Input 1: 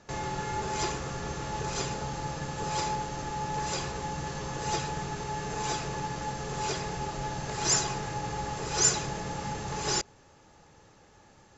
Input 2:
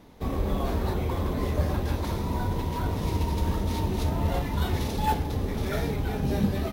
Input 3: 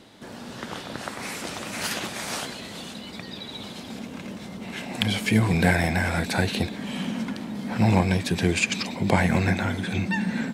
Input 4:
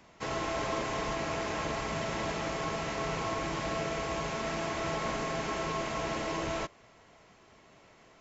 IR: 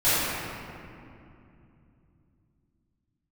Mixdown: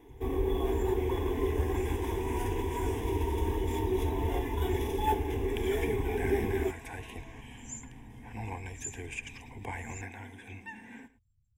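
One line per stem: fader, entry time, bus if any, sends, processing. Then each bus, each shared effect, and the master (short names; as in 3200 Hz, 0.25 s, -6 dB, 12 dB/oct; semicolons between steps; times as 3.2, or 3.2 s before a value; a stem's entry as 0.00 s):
-4.5 dB, 0.00 s, no send, no echo send, inverse Chebyshev band-stop 650–2100 Hz, stop band 80 dB; spectral gate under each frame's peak -20 dB strong
-3.0 dB, 0.00 s, no send, no echo send, small resonant body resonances 370/3400 Hz, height 15 dB, ringing for 45 ms
-14.0 dB, 0.55 s, no send, echo send -17 dB, upward compressor, threshold -27 dBFS
-15.0 dB, 0.75 s, no send, no echo send, dry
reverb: off
echo: echo 0.109 s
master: bell 350 Hz -10 dB 0.2 oct; fixed phaser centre 880 Hz, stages 8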